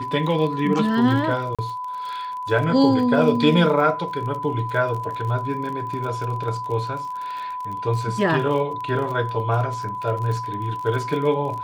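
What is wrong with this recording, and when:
crackle 37 per s -29 dBFS
whine 1 kHz -27 dBFS
1.55–1.59 s: dropout 36 ms

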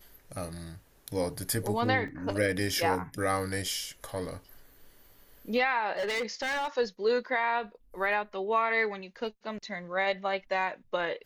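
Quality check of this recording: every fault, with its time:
2.08 s: dropout 2.2 ms
5.94–6.68 s: clipped -28 dBFS

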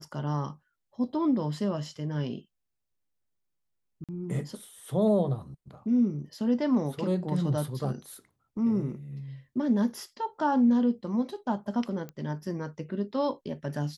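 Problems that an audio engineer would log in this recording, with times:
4.04–4.09 s: dropout 47 ms
12.09 s: pop -26 dBFS

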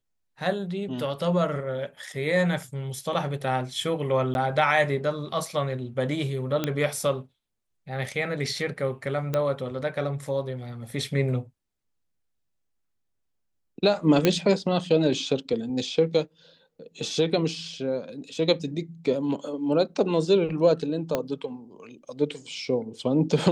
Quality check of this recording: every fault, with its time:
4.34–4.35 s: dropout 11 ms
6.64 s: pop -11 dBFS
9.34 s: pop -13 dBFS
14.25 s: pop -6 dBFS
21.15 s: pop -11 dBFS

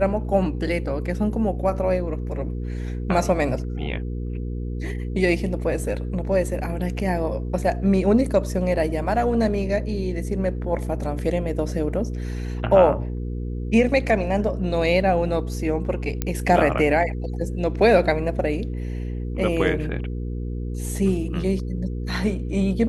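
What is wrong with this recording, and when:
hum 60 Hz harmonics 8 -28 dBFS
16.22 s: pop -9 dBFS

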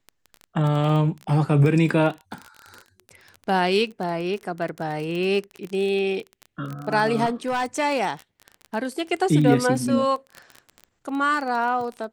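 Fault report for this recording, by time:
crackle 24 per s -27 dBFS
7.25–7.66 s: clipped -20 dBFS

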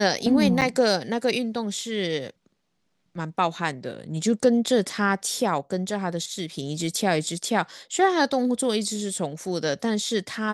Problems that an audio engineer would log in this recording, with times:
0.61–0.62 s: dropout 7.7 ms

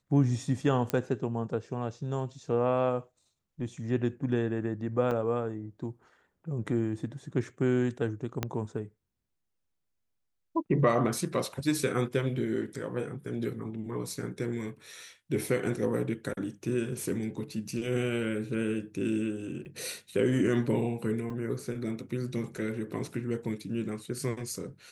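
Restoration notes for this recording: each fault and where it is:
0.90 s: pop -14 dBFS
5.11 s: dropout 4.4 ms
8.43 s: pop -14 dBFS
19.65–19.66 s: dropout 6.4 ms
21.30 s: dropout 2.6 ms

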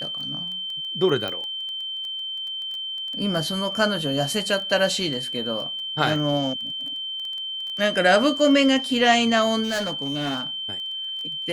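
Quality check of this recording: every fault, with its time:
crackle 12 per s -30 dBFS
whine 3.1 kHz -28 dBFS
1.28 s: pop -16 dBFS
9.63–10.43 s: clipped -22 dBFS

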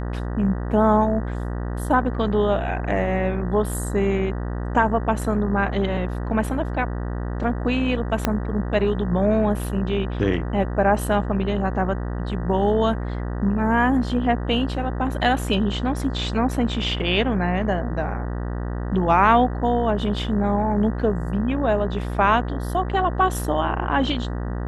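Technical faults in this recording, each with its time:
buzz 60 Hz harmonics 32 -27 dBFS
8.25 s: pop -5 dBFS

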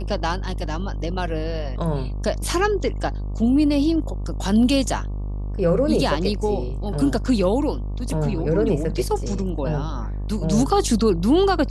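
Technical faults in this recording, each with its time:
buzz 50 Hz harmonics 24 -27 dBFS

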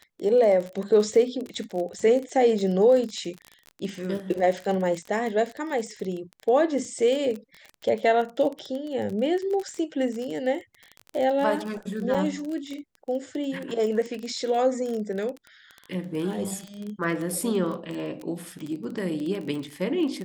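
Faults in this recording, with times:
crackle 25 per s -30 dBFS
12.14–12.15 s: dropout 5.3 ms

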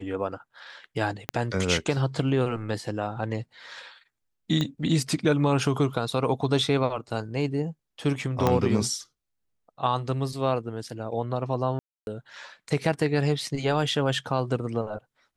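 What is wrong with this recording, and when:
1.29 s: pop -11 dBFS
4.61 s: pop -15 dBFS
8.47 s: pop -9 dBFS
11.79–12.07 s: dropout 281 ms

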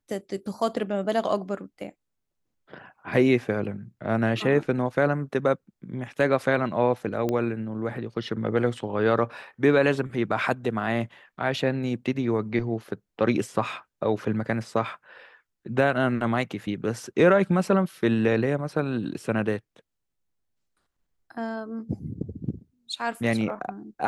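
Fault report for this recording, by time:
7.29 s: pop -15 dBFS

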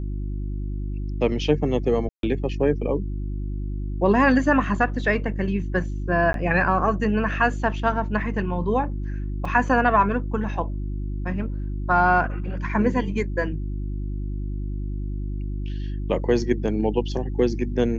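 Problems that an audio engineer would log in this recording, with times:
hum 50 Hz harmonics 7 -28 dBFS
2.09–2.23 s: dropout 142 ms
6.33–6.34 s: dropout 12 ms
9.45 s: dropout 4.5 ms

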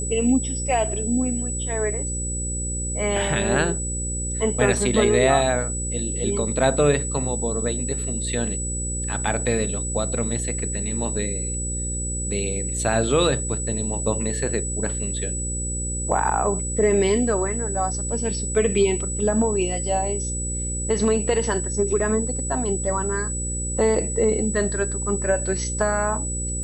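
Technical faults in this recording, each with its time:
buzz 60 Hz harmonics 9 -29 dBFS
whine 7.9 kHz -28 dBFS

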